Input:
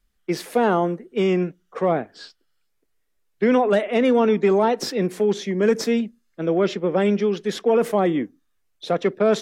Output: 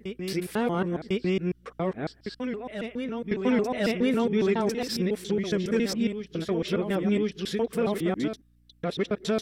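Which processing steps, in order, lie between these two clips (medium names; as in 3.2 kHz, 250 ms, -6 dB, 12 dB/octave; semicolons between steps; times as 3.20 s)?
time reversed locally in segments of 138 ms; peaking EQ 730 Hz -10 dB 2.1 oct; hum 60 Hz, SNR 34 dB; peaking EQ 6.6 kHz -7 dB 0.21 oct; reverse echo 1051 ms -8 dB; trim -1.5 dB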